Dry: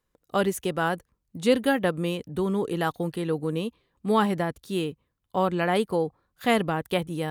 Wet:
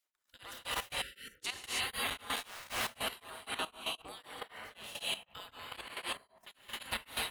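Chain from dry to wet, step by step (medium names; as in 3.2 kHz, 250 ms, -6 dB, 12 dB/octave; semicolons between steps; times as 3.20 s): 2.18–2.65 s: cycle switcher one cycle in 2, muted; band-stop 540 Hz, Q 12; feedback echo behind a band-pass 105 ms, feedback 47%, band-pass 890 Hz, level -10 dB; compression 5:1, threshold -25 dBFS, peak gain reduction 9 dB; spectral gate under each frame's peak -20 dB weak; gated-style reverb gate 350 ms rising, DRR -6 dB; 1.02–1.43 s: spectral selection erased 580–1300 Hz; 4.40–4.84 s: peaking EQ 9.5 kHz -8 dB 2.5 oct; 5.88–6.75 s: gate -38 dBFS, range -17 dB; level held to a coarse grid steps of 13 dB; tremolo of two beating tones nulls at 3.9 Hz; trim +5.5 dB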